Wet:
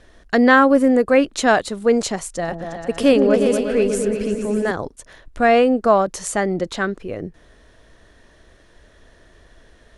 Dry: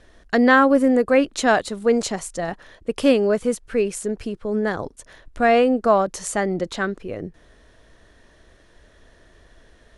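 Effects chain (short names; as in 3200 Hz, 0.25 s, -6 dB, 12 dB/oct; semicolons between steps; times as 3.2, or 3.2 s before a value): 2.34–4.71 repeats that get brighter 0.119 s, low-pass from 400 Hz, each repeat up 2 oct, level -3 dB; gain +2 dB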